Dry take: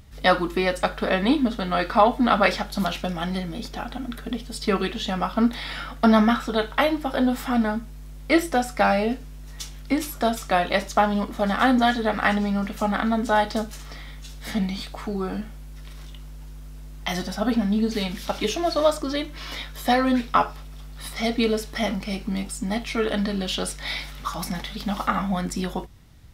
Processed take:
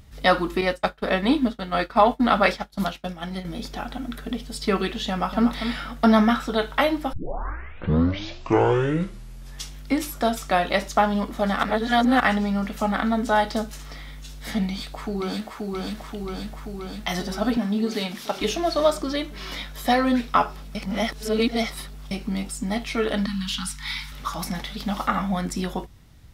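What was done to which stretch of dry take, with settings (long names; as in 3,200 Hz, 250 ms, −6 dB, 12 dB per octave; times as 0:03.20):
0:00.61–0:03.45: downward expander −23 dBFS
0:05.08–0:05.52: delay throw 240 ms, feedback 15%, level −8.5 dB
0:07.13: tape start 2.60 s
0:11.63–0:12.20: reverse
0:14.67–0:15.70: delay throw 530 ms, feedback 75%, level −2 dB
0:17.57–0:18.41: high-pass filter 190 Hz
0:20.75–0:22.11: reverse
0:23.26–0:24.12: Chebyshev band-stop filter 250–870 Hz, order 5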